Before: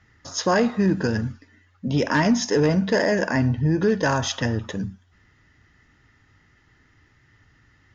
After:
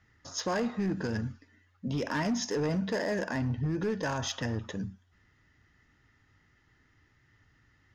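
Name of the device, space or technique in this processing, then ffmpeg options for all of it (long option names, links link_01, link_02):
limiter into clipper: -af "alimiter=limit=-14.5dB:level=0:latency=1:release=60,asoftclip=type=hard:threshold=-17.5dB,volume=-7.5dB"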